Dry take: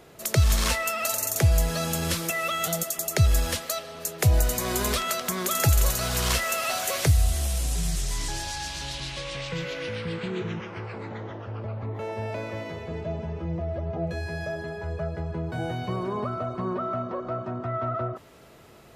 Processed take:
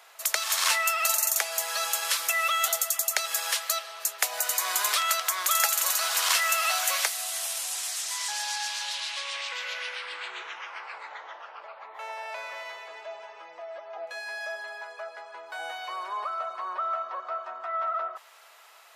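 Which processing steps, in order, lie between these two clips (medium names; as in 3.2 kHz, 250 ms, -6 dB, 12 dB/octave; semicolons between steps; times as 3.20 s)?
high-pass 820 Hz 24 dB/octave; trim +3 dB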